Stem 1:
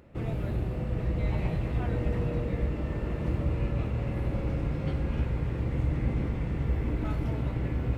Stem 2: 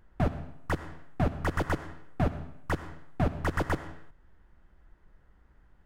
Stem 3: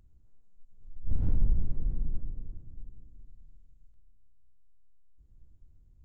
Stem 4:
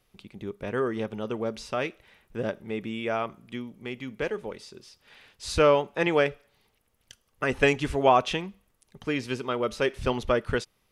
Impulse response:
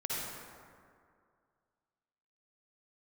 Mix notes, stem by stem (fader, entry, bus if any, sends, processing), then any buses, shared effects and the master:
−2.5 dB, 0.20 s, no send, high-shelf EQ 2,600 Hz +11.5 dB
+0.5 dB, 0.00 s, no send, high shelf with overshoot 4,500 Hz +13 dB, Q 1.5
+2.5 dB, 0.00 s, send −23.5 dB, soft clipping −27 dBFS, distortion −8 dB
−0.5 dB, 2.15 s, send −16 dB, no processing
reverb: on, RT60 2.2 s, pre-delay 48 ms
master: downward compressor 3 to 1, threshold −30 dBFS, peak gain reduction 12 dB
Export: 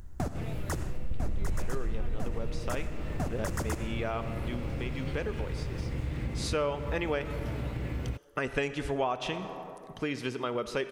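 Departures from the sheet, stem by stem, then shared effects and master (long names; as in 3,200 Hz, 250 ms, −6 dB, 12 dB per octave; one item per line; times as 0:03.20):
stem 3 +2.5 dB → +13.5 dB
stem 4: entry 2.15 s → 0.95 s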